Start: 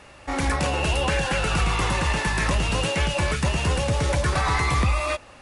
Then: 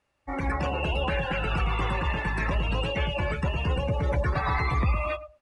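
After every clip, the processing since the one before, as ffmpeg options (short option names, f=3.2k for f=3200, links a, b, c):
-filter_complex "[0:a]asplit=2[a][b];[b]adelay=109,lowpass=f=2.4k:p=1,volume=-10dB,asplit=2[c][d];[d]adelay=109,lowpass=f=2.4k:p=1,volume=0.32,asplit=2[e][f];[f]adelay=109,lowpass=f=2.4k:p=1,volume=0.32,asplit=2[g][h];[h]adelay=109,lowpass=f=2.4k:p=1,volume=0.32[i];[a][c][e][g][i]amix=inputs=5:normalize=0,afftdn=nr=24:nf=-29,volume=-4dB"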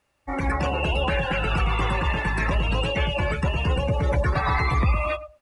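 -af "highshelf=f=7k:g=6.5,volume=3.5dB"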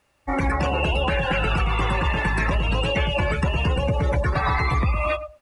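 -af "acompressor=threshold=-23dB:ratio=6,volume=5dB"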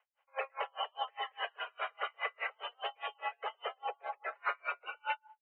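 -af "highpass=f=250:t=q:w=0.5412,highpass=f=250:t=q:w=1.307,lowpass=f=2.7k:t=q:w=0.5176,lowpass=f=2.7k:t=q:w=0.7071,lowpass=f=2.7k:t=q:w=1.932,afreqshift=260,aeval=exprs='val(0)*pow(10,-39*(0.5-0.5*cos(2*PI*4.9*n/s))/20)':c=same,volume=-7dB"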